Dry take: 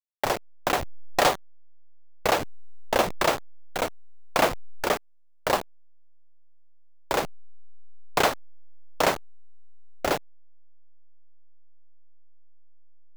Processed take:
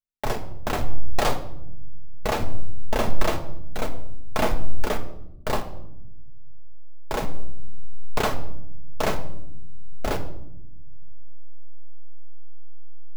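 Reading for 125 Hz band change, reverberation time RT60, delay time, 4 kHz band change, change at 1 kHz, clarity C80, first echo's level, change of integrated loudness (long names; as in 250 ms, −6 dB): +9.0 dB, 0.85 s, no echo audible, −4.5 dB, −3.5 dB, 15.5 dB, no echo audible, −3.0 dB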